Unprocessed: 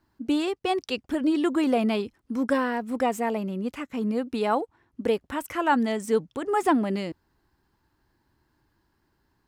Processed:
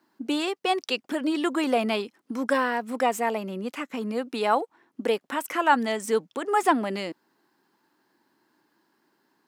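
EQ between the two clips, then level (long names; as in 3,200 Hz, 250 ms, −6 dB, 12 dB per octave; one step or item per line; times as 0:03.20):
high-pass filter 210 Hz 24 dB per octave
dynamic equaliser 280 Hz, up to −7 dB, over −37 dBFS, Q 0.75
+4.0 dB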